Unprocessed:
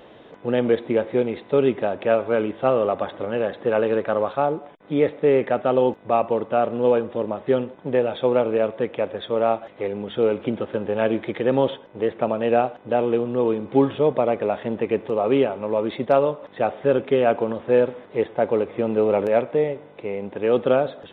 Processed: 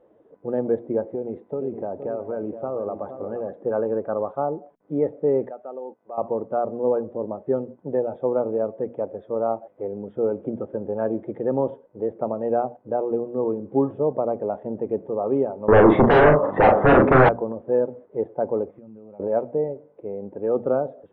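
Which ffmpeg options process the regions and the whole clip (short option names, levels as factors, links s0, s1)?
-filter_complex "[0:a]asettb=1/sr,asplit=3[s0][s1][s2];[s0]atrim=end=1.124[s3];[s1]atrim=start=1.12:end=3.49,asetpts=PTS-STARTPTS,afade=t=in:d=0.004:c=qsin,afade=t=out:st=2.366:d=0.004:c=qsin,acompressor=threshold=0.1:ratio=6:attack=3.2:release=140:knee=1:detection=peak,aecho=1:1:469:0.355,atrim=end_sample=104517[s4];[s2]atrim=start=3.486[s5];[s3][s4]acrossfade=d=0.004:c1=hsin:c2=qsin[s6];[s6][s5]acrossfade=d=0.004:c1=qsin:c2=hsin,asettb=1/sr,asplit=3[s7][s8][s9];[s7]atrim=end=5.494[s10];[s8]atrim=start=5.49:end=6.18,asetpts=PTS-STARTPTS,afade=t=in:d=0.004:c=qsin,afade=t=out:st=0.686:d=0.004:c=qsin,highpass=f=580:p=1,acompressor=threshold=0.00794:ratio=1.5:attack=3.2:release=140:knee=1:detection=peak[s11];[s9]atrim=start=6.176[s12];[s10][s11]acrossfade=d=0.004:c1=hsin:c2=qsin[s13];[s13][s12]acrossfade=d=0.004:c1=qsin:c2=hsin,asettb=1/sr,asplit=3[s14][s15][s16];[s14]atrim=end=15.684[s17];[s15]atrim=start=15.68:end=17.29,asetpts=PTS-STARTPTS,afade=t=in:d=0.004:c=qsin,afade=t=out:st=1.606:d=0.004:c=qsin,equalizer=f=1200:t=o:w=0.47:g=4.5,aeval=exprs='0.531*sin(PI/2*6.31*val(0)/0.531)':c=same,asplit=2[s18][s19];[s19]adelay=39,volume=0.631[s20];[s18][s20]amix=inputs=2:normalize=0,atrim=end_sample=71001[s21];[s16]atrim=start=17.286[s22];[s17][s21]acrossfade=d=0.004:c1=hsin:c2=qsin[s23];[s23][s22]acrossfade=d=0.004:c1=qsin:c2=hsin,asettb=1/sr,asplit=3[s24][s25][s26];[s24]atrim=end=18.704[s27];[s25]atrim=start=18.7:end=19.2,asetpts=PTS-STARTPTS,afade=t=in:d=0.004:c=qsin,afade=t=out:st=0.496:d=0.004:c=qsin,equalizer=f=450:w=1.4:g=-11.5,acompressor=threshold=0.0178:ratio=10:attack=3.2:release=140:knee=1:detection=peak[s28];[s26]atrim=start=19.196[s29];[s27][s28]acrossfade=d=0.004:c1=hsin:c2=qsin[s30];[s30][s29]acrossfade=d=0.004:c1=qsin:c2=hsin,lowpass=1100,bandreject=f=60:t=h:w=6,bandreject=f=120:t=h:w=6,bandreject=f=180:t=h:w=6,bandreject=f=240:t=h:w=6,afftdn=nr=12:nf=-35,volume=0.708"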